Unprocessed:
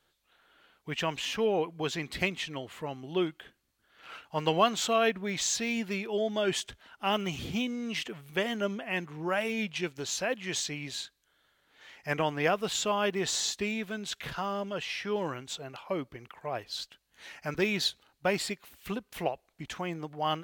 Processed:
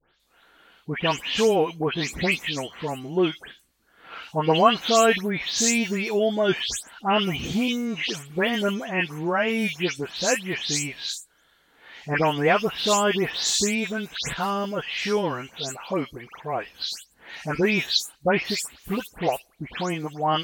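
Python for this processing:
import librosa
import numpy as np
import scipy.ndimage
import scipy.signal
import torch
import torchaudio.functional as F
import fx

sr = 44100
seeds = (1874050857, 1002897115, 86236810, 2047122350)

y = fx.spec_delay(x, sr, highs='late', ms=198)
y = F.gain(torch.from_numpy(y), 8.0).numpy()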